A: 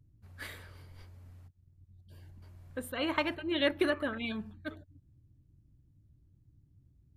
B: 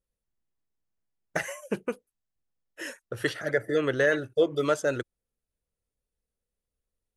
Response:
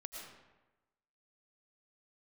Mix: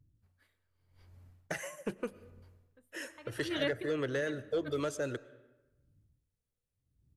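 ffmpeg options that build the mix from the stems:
-filter_complex "[0:a]aeval=exprs='val(0)*pow(10,-29*(0.5-0.5*cos(2*PI*0.84*n/s))/20)':c=same,volume=0.631[s0];[1:a]acrossover=split=410|3000[s1][s2][s3];[s2]acompressor=threshold=0.0355:ratio=6[s4];[s1][s4][s3]amix=inputs=3:normalize=0,asoftclip=type=tanh:threshold=0.1,adelay=150,volume=0.501,asplit=2[s5][s6];[s6]volume=0.299[s7];[2:a]atrim=start_sample=2205[s8];[s7][s8]afir=irnorm=-1:irlink=0[s9];[s0][s5][s9]amix=inputs=3:normalize=0"

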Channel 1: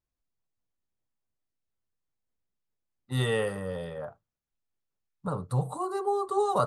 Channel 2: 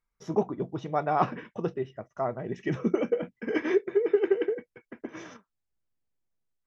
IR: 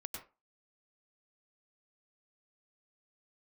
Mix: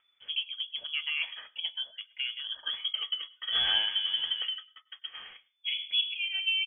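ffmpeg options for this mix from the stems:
-filter_complex "[0:a]adelay=400,volume=0.708,asplit=2[s0][s1];[s1]volume=0.376[s2];[1:a]aemphasis=mode=production:type=50kf,acompressor=threshold=0.0398:ratio=2.5,volume=0.668,asplit=2[s3][s4];[s4]volume=0.158[s5];[2:a]atrim=start_sample=2205[s6];[s2][s5]amix=inputs=2:normalize=0[s7];[s7][s6]afir=irnorm=-1:irlink=0[s8];[s0][s3][s8]amix=inputs=3:normalize=0,acompressor=mode=upward:threshold=0.00158:ratio=2.5,lowpass=f=3000:t=q:w=0.5098,lowpass=f=3000:t=q:w=0.6013,lowpass=f=3000:t=q:w=0.9,lowpass=f=3000:t=q:w=2.563,afreqshift=-3500"

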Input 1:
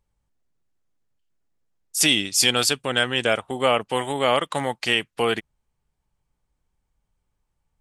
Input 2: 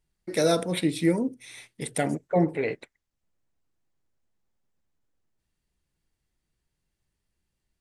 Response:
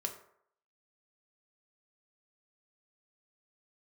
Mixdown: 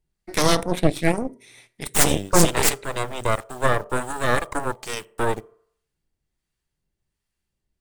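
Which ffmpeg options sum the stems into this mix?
-filter_complex "[0:a]equalizer=f=125:t=o:w=1:g=9,equalizer=f=500:t=o:w=1:g=5,equalizer=f=1000:t=o:w=1:g=8,equalizer=f=2000:t=o:w=1:g=-9,equalizer=f=4000:t=o:w=1:g=-6,equalizer=f=8000:t=o:w=1:g=10,acrusher=bits=6:mix=0:aa=0.000001,asoftclip=type=tanh:threshold=0.562,volume=0.355,asplit=2[s0][s1];[s1]volume=0.355[s2];[1:a]volume=0.944,asplit=2[s3][s4];[s4]volume=0.299[s5];[2:a]atrim=start_sample=2205[s6];[s2][s5]amix=inputs=2:normalize=0[s7];[s7][s6]afir=irnorm=-1:irlink=0[s8];[s0][s3][s8]amix=inputs=3:normalize=0,acrossover=split=750[s9][s10];[s9]aeval=exprs='val(0)*(1-0.5/2+0.5/2*cos(2*PI*1.3*n/s))':c=same[s11];[s10]aeval=exprs='val(0)*(1-0.5/2-0.5/2*cos(2*PI*1.3*n/s))':c=same[s12];[s11][s12]amix=inputs=2:normalize=0,aeval=exprs='0.447*(cos(1*acos(clip(val(0)/0.447,-1,1)))-cos(1*PI/2))+0.224*(cos(6*acos(clip(val(0)/0.447,-1,1)))-cos(6*PI/2))':c=same"

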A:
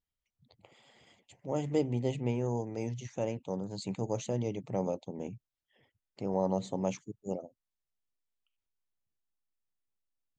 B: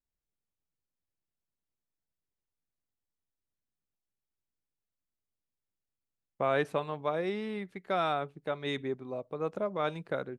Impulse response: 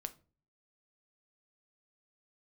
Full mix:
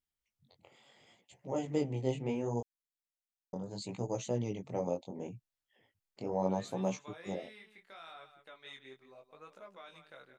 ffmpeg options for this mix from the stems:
-filter_complex "[0:a]volume=1.19,asplit=3[s0][s1][s2];[s0]atrim=end=2.61,asetpts=PTS-STARTPTS,afade=t=out:st=2.606:d=0.004:c=hsin[s3];[s1]atrim=start=2.61:end=3.53,asetpts=PTS-STARTPTS,volume=0[s4];[s2]atrim=start=3.53,asetpts=PTS-STARTPTS,afade=t=in:d=0.004:c=hsin[s5];[s3][s4][s5]concat=n=3:v=0:a=1,asplit=2[s6][s7];[1:a]tiltshelf=f=970:g=-9.5,alimiter=level_in=1.12:limit=0.0631:level=0:latency=1:release=23,volume=0.891,volume=0.266,asplit=2[s8][s9];[s9]volume=0.282[s10];[s7]apad=whole_len=458162[s11];[s8][s11]sidechaincompress=threshold=0.0355:ratio=8:attack=16:release=189[s12];[s10]aecho=0:1:174:1[s13];[s6][s12][s13]amix=inputs=3:normalize=0,lowshelf=f=190:g=-4,flanger=delay=15.5:depth=7.7:speed=0.72"

